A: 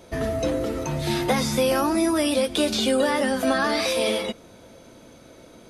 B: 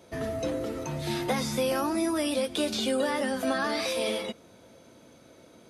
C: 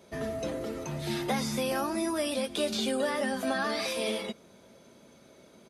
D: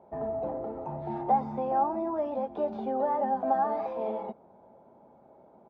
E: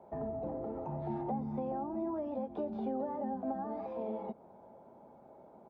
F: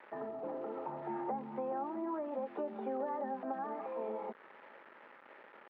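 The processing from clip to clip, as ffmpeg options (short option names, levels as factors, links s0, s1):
-af "highpass=76,volume=0.501"
-af "aecho=1:1:5:0.38,volume=0.794"
-af "lowpass=f=830:t=q:w=6.6,volume=0.596"
-filter_complex "[0:a]acrossover=split=370[s0][s1];[s1]acompressor=threshold=0.01:ratio=10[s2];[s0][s2]amix=inputs=2:normalize=0"
-af "aeval=exprs='val(0)*gte(abs(val(0)),0.00188)':c=same,highpass=430,equalizer=f=690:t=q:w=4:g=-9,equalizer=f=1300:t=q:w=4:g=5,equalizer=f=1800:t=q:w=4:g=5,lowpass=f=2700:w=0.5412,lowpass=f=2700:w=1.3066,volume=1.58"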